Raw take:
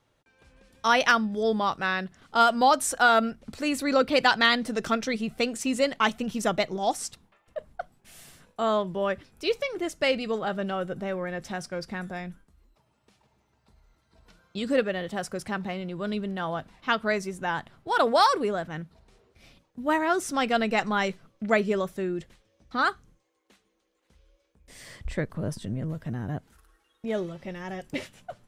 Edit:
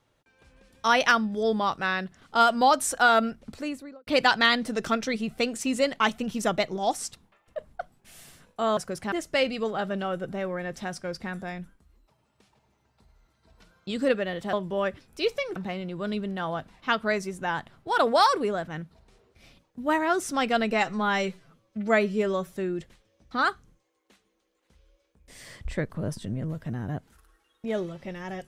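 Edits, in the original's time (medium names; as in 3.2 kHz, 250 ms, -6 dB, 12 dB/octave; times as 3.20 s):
3.38–4.07 s: studio fade out
8.77–9.80 s: swap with 15.21–15.56 s
20.73–21.93 s: stretch 1.5×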